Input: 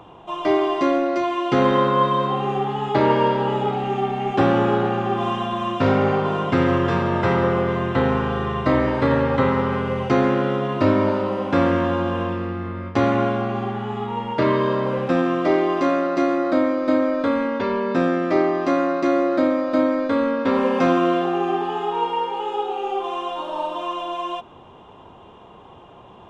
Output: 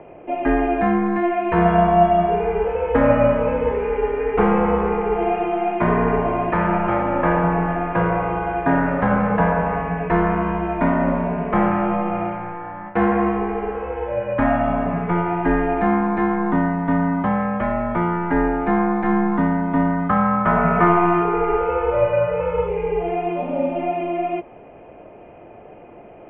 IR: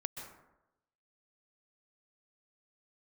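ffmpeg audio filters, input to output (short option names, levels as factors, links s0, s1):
-filter_complex "[0:a]highpass=f=540:t=q:w=0.5412,highpass=f=540:t=q:w=1.307,lowpass=f=2600:t=q:w=0.5176,lowpass=f=2600:t=q:w=0.7071,lowpass=f=2600:t=q:w=1.932,afreqshift=-350,asettb=1/sr,asplit=3[s0][s1][s2];[s0]atrim=end=20.094[s3];[s1]atrim=start=20.09:end=22.68,asetpts=PTS-STARTPTS,afade=t=in:d=0.004:c=qsin,afade=t=out:st=2.586:d=0.004:c=qsin,equalizer=f=1300:t=o:w=0.47:g=11[s4];[s2]atrim=start=22.676[s5];[s3][s4]acrossfade=d=0.004:c1=hsin:c2=qsin[s6];[s6][s5]acrossfade=d=0.004:c1=qsin:c2=hsin,volume=1.88"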